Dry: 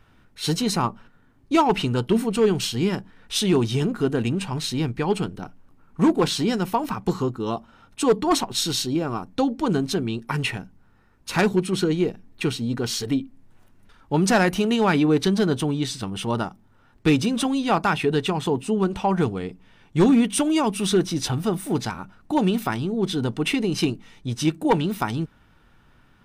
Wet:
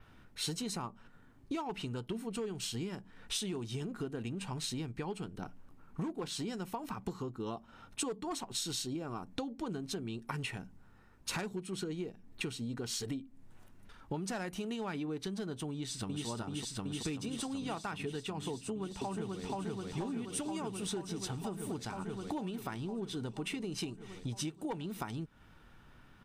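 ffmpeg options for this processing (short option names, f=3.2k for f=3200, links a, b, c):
-filter_complex "[0:a]asplit=2[a][b];[b]afade=t=in:st=15.71:d=0.01,afade=t=out:st=16.26:d=0.01,aecho=0:1:380|760|1140|1520|1900|2280|2660|3040|3420|3800|4180|4560:1|0.85|0.7225|0.614125|0.522006|0.443705|0.37715|0.320577|0.272491|0.231617|0.196874|0.167343[c];[a][c]amix=inputs=2:normalize=0,asplit=2[d][e];[e]afade=t=in:st=18.53:d=0.01,afade=t=out:st=19.43:d=0.01,aecho=0:1:480|960|1440|1920|2400|2880|3360|3840|4320|4800|5280|5760:1|0.75|0.5625|0.421875|0.316406|0.237305|0.177979|0.133484|0.100113|0.0750847|0.0563135|0.0422351[f];[d][f]amix=inputs=2:normalize=0,acompressor=threshold=-33dB:ratio=12,adynamicequalizer=threshold=0.00141:dfrequency=7900:dqfactor=2:tfrequency=7900:tqfactor=2:attack=5:release=100:ratio=0.375:range=3:mode=boostabove:tftype=bell,volume=-2.5dB"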